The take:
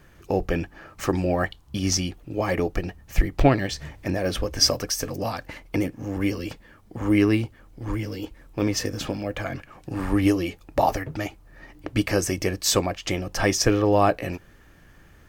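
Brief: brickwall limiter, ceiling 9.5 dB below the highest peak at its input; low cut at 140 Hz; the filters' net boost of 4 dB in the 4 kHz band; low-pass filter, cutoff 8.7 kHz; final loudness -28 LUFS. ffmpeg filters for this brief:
-af "highpass=140,lowpass=8700,equalizer=f=4000:t=o:g=6,volume=0.841,alimiter=limit=0.211:level=0:latency=1"

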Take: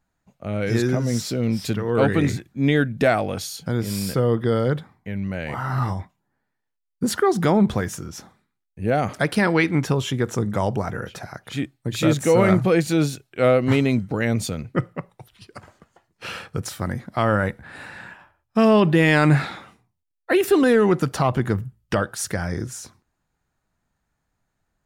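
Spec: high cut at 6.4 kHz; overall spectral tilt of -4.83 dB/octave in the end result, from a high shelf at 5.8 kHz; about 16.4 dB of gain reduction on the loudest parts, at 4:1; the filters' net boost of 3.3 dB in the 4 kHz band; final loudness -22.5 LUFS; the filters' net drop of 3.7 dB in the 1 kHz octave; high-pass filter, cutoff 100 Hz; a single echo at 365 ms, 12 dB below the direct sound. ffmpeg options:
-af "highpass=100,lowpass=6400,equalizer=f=1000:t=o:g=-5.5,equalizer=f=4000:t=o:g=8,highshelf=f=5800:g=-8,acompressor=threshold=0.02:ratio=4,aecho=1:1:365:0.251,volume=5.01"

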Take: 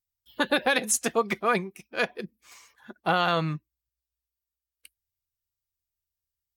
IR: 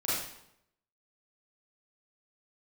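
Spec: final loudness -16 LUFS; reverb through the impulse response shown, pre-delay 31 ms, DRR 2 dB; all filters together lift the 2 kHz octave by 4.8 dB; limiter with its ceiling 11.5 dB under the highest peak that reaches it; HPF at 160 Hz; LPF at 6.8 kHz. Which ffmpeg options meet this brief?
-filter_complex "[0:a]highpass=160,lowpass=6800,equalizer=f=2000:t=o:g=6.5,alimiter=limit=0.126:level=0:latency=1,asplit=2[s0][s1];[1:a]atrim=start_sample=2205,adelay=31[s2];[s1][s2]afir=irnorm=-1:irlink=0,volume=0.316[s3];[s0][s3]amix=inputs=2:normalize=0,volume=5.01"

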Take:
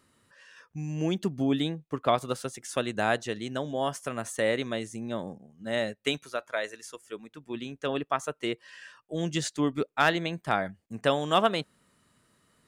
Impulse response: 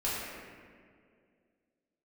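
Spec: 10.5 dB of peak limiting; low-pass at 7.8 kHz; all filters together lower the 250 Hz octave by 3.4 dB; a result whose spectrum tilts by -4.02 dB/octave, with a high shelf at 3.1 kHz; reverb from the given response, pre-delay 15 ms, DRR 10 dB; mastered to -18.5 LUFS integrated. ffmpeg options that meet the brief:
-filter_complex "[0:a]lowpass=7800,equalizer=f=250:t=o:g=-4.5,highshelf=f=3100:g=5.5,alimiter=limit=0.119:level=0:latency=1,asplit=2[s0][s1];[1:a]atrim=start_sample=2205,adelay=15[s2];[s1][s2]afir=irnorm=-1:irlink=0,volume=0.133[s3];[s0][s3]amix=inputs=2:normalize=0,volume=5.31"

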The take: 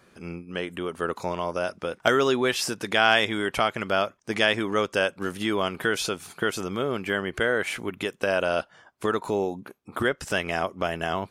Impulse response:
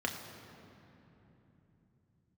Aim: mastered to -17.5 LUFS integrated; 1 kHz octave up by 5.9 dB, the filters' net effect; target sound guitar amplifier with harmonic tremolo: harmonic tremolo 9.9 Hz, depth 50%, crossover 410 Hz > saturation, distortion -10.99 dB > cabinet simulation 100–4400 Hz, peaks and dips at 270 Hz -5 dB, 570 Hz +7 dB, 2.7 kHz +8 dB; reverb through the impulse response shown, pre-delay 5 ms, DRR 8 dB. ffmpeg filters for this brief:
-filter_complex "[0:a]equalizer=f=1000:t=o:g=7.5,asplit=2[s0][s1];[1:a]atrim=start_sample=2205,adelay=5[s2];[s1][s2]afir=irnorm=-1:irlink=0,volume=0.211[s3];[s0][s3]amix=inputs=2:normalize=0,acrossover=split=410[s4][s5];[s4]aeval=exprs='val(0)*(1-0.5/2+0.5/2*cos(2*PI*9.9*n/s))':c=same[s6];[s5]aeval=exprs='val(0)*(1-0.5/2-0.5/2*cos(2*PI*9.9*n/s))':c=same[s7];[s6][s7]amix=inputs=2:normalize=0,asoftclip=threshold=0.141,highpass=100,equalizer=f=270:t=q:w=4:g=-5,equalizer=f=570:t=q:w=4:g=7,equalizer=f=2700:t=q:w=4:g=8,lowpass=f=4400:w=0.5412,lowpass=f=4400:w=1.3066,volume=2.51"

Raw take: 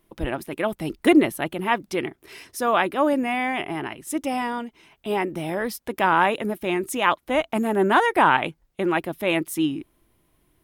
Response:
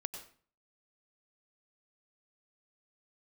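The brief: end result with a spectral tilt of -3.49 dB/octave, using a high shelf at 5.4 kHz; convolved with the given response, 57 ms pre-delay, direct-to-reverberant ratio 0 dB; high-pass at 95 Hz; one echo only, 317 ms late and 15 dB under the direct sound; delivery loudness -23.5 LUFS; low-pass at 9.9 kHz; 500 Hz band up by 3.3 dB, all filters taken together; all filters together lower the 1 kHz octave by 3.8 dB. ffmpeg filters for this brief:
-filter_complex "[0:a]highpass=95,lowpass=9900,equalizer=f=500:t=o:g=6.5,equalizer=f=1000:t=o:g=-7.5,highshelf=f=5400:g=8.5,aecho=1:1:317:0.178,asplit=2[s0][s1];[1:a]atrim=start_sample=2205,adelay=57[s2];[s1][s2]afir=irnorm=-1:irlink=0,volume=1.12[s3];[s0][s3]amix=inputs=2:normalize=0,volume=0.631"

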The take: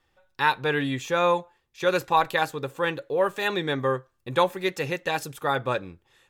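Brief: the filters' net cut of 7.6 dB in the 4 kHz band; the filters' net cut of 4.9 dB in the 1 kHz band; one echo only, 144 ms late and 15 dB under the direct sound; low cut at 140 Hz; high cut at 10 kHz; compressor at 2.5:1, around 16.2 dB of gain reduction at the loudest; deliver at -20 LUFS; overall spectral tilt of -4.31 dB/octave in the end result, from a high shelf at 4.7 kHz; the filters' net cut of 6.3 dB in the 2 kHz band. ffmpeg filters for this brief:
-af "highpass=140,lowpass=10000,equalizer=f=1000:t=o:g=-4.5,equalizer=f=2000:t=o:g=-4.5,equalizer=f=4000:t=o:g=-4,highshelf=f=4700:g=-7.5,acompressor=threshold=0.00562:ratio=2.5,aecho=1:1:144:0.178,volume=13.3"

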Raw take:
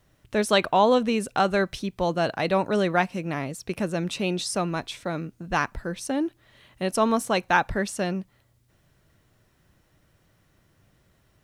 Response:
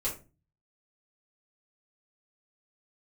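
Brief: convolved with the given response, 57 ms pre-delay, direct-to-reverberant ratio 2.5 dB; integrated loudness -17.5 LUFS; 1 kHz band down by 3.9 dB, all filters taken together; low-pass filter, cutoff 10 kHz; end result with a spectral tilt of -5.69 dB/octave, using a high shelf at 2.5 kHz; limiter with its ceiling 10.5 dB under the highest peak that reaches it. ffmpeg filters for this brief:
-filter_complex "[0:a]lowpass=10000,equalizer=f=1000:t=o:g=-4,highshelf=f=2500:g=-8,alimiter=limit=0.0944:level=0:latency=1,asplit=2[s0][s1];[1:a]atrim=start_sample=2205,adelay=57[s2];[s1][s2]afir=irnorm=-1:irlink=0,volume=0.447[s3];[s0][s3]amix=inputs=2:normalize=0,volume=3.98"

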